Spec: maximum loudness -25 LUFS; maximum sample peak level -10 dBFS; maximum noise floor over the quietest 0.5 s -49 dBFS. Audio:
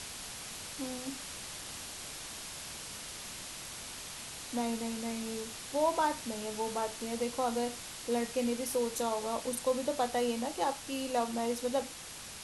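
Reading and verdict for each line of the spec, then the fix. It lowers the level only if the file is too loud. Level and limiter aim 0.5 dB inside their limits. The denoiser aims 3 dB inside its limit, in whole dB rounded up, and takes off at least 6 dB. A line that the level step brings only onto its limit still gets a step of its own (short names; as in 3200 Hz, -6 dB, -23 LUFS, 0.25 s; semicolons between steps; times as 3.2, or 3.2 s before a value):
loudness -35.5 LUFS: OK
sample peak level -19.0 dBFS: OK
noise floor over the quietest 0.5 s -46 dBFS: fail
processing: denoiser 6 dB, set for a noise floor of -46 dBFS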